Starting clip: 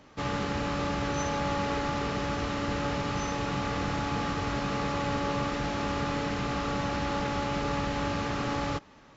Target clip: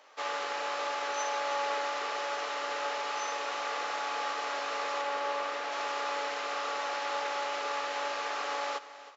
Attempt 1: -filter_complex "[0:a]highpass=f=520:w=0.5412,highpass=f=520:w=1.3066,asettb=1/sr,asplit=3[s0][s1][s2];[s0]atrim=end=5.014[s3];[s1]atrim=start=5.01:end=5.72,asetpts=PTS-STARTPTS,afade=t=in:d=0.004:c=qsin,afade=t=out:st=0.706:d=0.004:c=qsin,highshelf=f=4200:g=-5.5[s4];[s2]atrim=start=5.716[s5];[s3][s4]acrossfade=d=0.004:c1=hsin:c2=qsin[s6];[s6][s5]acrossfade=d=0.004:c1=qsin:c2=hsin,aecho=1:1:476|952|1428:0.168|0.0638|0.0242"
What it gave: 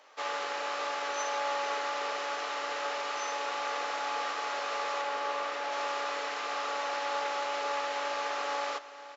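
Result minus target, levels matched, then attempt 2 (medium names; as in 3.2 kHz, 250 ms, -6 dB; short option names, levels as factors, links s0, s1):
echo 158 ms late
-filter_complex "[0:a]highpass=f=520:w=0.5412,highpass=f=520:w=1.3066,asettb=1/sr,asplit=3[s0][s1][s2];[s0]atrim=end=5.014[s3];[s1]atrim=start=5.01:end=5.72,asetpts=PTS-STARTPTS,afade=t=in:d=0.004:c=qsin,afade=t=out:st=0.706:d=0.004:c=qsin,highshelf=f=4200:g=-5.5[s4];[s2]atrim=start=5.716[s5];[s3][s4]acrossfade=d=0.004:c1=hsin:c2=qsin[s6];[s6][s5]acrossfade=d=0.004:c1=qsin:c2=hsin,aecho=1:1:318|636|954:0.168|0.0638|0.0242"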